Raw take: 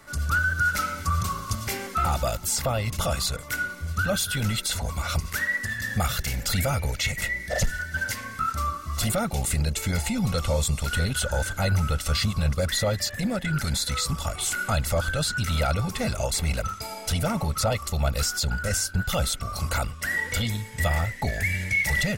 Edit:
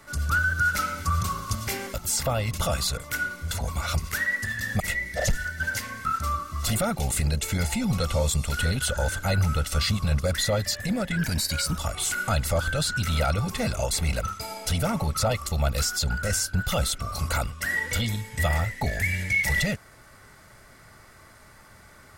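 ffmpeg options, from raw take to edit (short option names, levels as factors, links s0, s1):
-filter_complex "[0:a]asplit=6[s0][s1][s2][s3][s4][s5];[s0]atrim=end=1.942[s6];[s1]atrim=start=2.328:end=3.902[s7];[s2]atrim=start=4.718:end=6.012[s8];[s3]atrim=start=7.138:end=13.514[s9];[s4]atrim=start=13.51:end=14.19,asetpts=PTS-STARTPTS,asetrate=48951,aresample=44100,atrim=end_sample=27016,asetpts=PTS-STARTPTS[s10];[s5]atrim=start=14.186[s11];[s6][s7]acrossfade=d=0.004:c1=hsin:c2=hsin[s12];[s12][s8]acrossfade=d=0.004:c1=hsin:c2=hsin[s13];[s13][s9]acrossfade=d=0.004:c1=hsin:c2=hsin[s14];[s14][s10]acrossfade=d=0.004:c1=hsin:c2=hsin[s15];[s15][s11]acrossfade=d=0.004:c1=hsin:c2=hsin"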